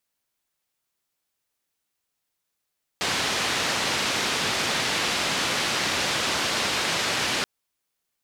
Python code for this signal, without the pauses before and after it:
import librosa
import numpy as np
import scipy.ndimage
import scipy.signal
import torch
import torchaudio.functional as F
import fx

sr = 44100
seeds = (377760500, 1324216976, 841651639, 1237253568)

y = fx.band_noise(sr, seeds[0], length_s=4.43, low_hz=93.0, high_hz=4400.0, level_db=-25.5)